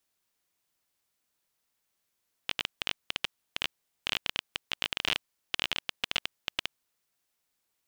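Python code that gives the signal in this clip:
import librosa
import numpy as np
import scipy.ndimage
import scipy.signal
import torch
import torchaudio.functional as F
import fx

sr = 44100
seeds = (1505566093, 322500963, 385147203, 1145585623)

y = fx.geiger_clicks(sr, seeds[0], length_s=4.31, per_s=16.0, level_db=-10.5)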